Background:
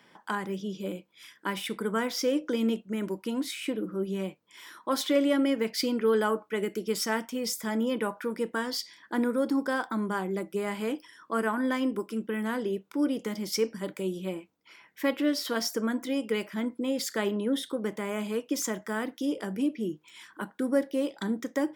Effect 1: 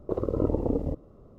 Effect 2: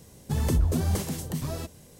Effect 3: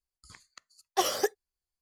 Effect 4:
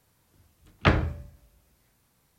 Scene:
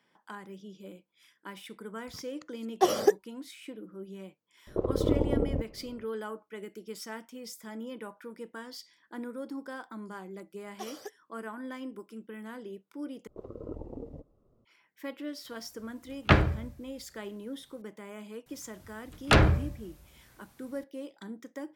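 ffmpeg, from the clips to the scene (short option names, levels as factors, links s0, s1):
-filter_complex "[3:a]asplit=2[s0][s1];[1:a]asplit=2[s2][s3];[4:a]asplit=2[s4][s5];[0:a]volume=0.251[s6];[s0]equalizer=f=210:w=0.31:g=15[s7];[s2]aemphasis=mode=reproduction:type=75kf[s8];[s1]highpass=100[s9];[s3]flanger=delay=1.1:depth=7.6:regen=61:speed=1.9:shape=sinusoidal[s10];[s5]aeval=exprs='0.631*sin(PI/2*3.98*val(0)/0.631)':c=same[s11];[s6]asplit=2[s12][s13];[s12]atrim=end=13.274[s14];[s10]atrim=end=1.38,asetpts=PTS-STARTPTS,volume=0.282[s15];[s13]atrim=start=14.646[s16];[s7]atrim=end=1.81,asetpts=PTS-STARTPTS,volume=0.531,afade=t=in:d=0.004:c=hsin,afade=t=out:st=1.806:d=0.004:c=hsin,adelay=1840[s17];[s8]atrim=end=1.38,asetpts=PTS-STARTPTS,volume=0.944,afade=t=in:d=0.004:c=hsin,afade=t=out:st=1.376:d=0.004:c=hsin,adelay=4670[s18];[s9]atrim=end=1.81,asetpts=PTS-STARTPTS,volume=0.158,afade=t=in:d=0.004:c=hsin,afade=t=out:st=1.806:d=0.004:c=hsin,adelay=9820[s19];[s4]atrim=end=2.38,asetpts=PTS-STARTPTS,afade=t=in:d=0.004:c=hsin,afade=t=out:st=2.376:d=0.004:c=hsin,adelay=15440[s20];[s11]atrim=end=2.38,asetpts=PTS-STARTPTS,volume=0.316,afade=t=in:d=0.004:c=hsin,afade=t=out:st=2.376:d=0.004:c=hsin,adelay=18460[s21];[s14][s15]acrossfade=d=0.004:c1=hsin:c2=hsin[s22];[s22][s16]acrossfade=d=0.004:c1=hsin:c2=hsin[s23];[s23][s17][s18][s19][s20][s21]amix=inputs=6:normalize=0"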